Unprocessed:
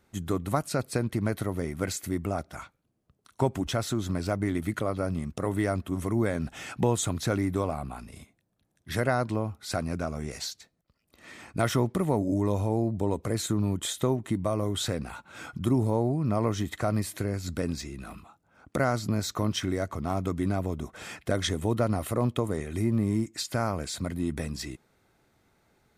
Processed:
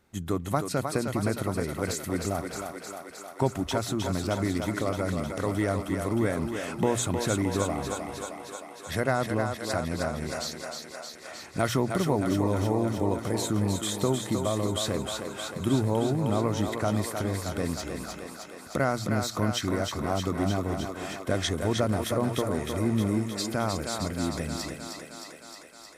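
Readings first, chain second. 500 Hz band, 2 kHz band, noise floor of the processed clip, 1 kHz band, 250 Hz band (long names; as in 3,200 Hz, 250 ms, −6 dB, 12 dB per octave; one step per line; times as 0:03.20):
+1.5 dB, +2.5 dB, −45 dBFS, +2.0 dB, +1.0 dB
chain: mains-hum notches 60/120 Hz
feedback echo with a high-pass in the loop 310 ms, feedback 75%, high-pass 280 Hz, level −5 dB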